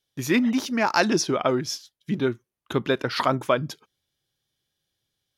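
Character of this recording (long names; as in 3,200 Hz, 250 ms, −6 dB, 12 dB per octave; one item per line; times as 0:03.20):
background noise floor −85 dBFS
spectral slope −4.5 dB per octave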